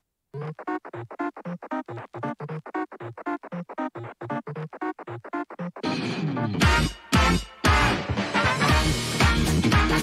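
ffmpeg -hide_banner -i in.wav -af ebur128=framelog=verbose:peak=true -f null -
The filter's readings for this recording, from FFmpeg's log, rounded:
Integrated loudness:
  I:         -25.3 LUFS
  Threshold: -35.7 LUFS
Loudness range:
  LRA:        11.9 LU
  Threshold: -46.3 LUFS
  LRA low:   -33.8 LUFS
  LRA high:  -21.9 LUFS
True peak:
  Peak:       -8.9 dBFS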